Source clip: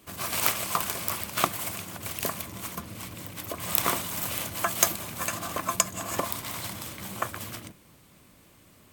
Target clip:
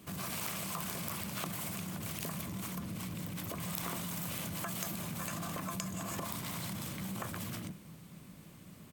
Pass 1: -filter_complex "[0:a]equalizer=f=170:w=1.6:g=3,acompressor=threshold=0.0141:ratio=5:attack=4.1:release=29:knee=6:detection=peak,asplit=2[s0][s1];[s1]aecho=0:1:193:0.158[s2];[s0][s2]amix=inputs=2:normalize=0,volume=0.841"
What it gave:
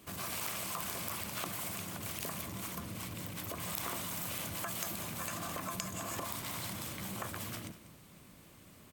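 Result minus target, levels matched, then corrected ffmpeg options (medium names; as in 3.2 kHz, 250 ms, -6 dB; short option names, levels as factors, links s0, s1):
echo-to-direct +9.5 dB; 125 Hz band -4.0 dB
-filter_complex "[0:a]equalizer=f=170:w=1.6:g=12.5,acompressor=threshold=0.0141:ratio=5:attack=4.1:release=29:knee=6:detection=peak,asplit=2[s0][s1];[s1]aecho=0:1:193:0.0531[s2];[s0][s2]amix=inputs=2:normalize=0,volume=0.841"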